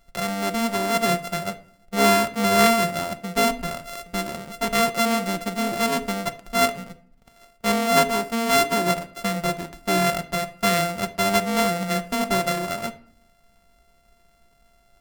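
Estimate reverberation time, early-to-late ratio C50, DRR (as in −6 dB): 0.55 s, 16.0 dB, 8.0 dB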